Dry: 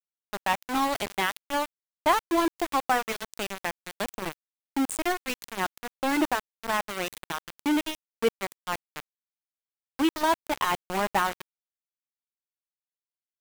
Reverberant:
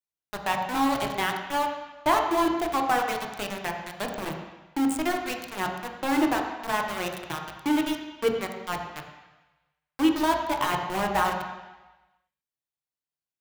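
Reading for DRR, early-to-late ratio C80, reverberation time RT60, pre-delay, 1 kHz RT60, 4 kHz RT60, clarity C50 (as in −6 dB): 2.0 dB, 6.0 dB, 1.1 s, 3 ms, 1.2 s, 1.1 s, 4.5 dB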